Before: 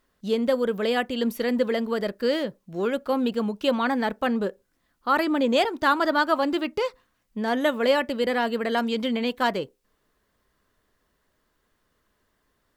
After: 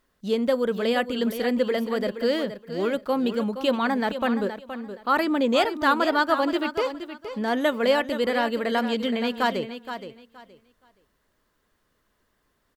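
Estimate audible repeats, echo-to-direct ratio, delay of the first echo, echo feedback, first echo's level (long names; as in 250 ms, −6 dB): 2, −10.5 dB, 471 ms, 21%, −10.5 dB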